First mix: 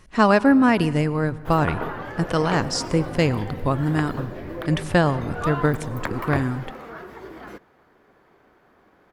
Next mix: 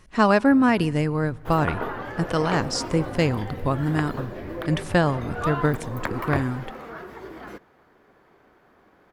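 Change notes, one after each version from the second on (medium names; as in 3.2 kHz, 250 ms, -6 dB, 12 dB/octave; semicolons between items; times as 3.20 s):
speech: send -8.5 dB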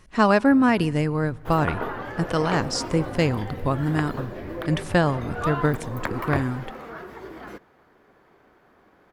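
no change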